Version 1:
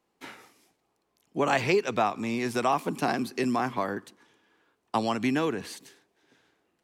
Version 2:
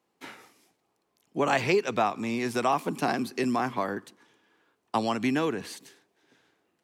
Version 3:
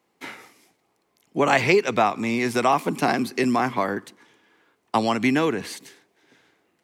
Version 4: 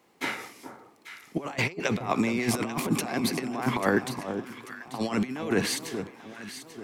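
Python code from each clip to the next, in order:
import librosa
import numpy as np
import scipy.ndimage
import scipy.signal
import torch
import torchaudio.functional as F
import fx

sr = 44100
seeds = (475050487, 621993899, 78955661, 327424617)

y1 = scipy.signal.sosfilt(scipy.signal.butter(2, 80.0, 'highpass', fs=sr, output='sos'), x)
y2 = fx.peak_eq(y1, sr, hz=2100.0, db=5.5, octaves=0.22)
y2 = y2 * librosa.db_to_amplitude(5.5)
y3 = fx.over_compress(y2, sr, threshold_db=-27.0, ratio=-0.5)
y3 = fx.echo_alternate(y3, sr, ms=420, hz=1200.0, feedback_pct=64, wet_db=-8)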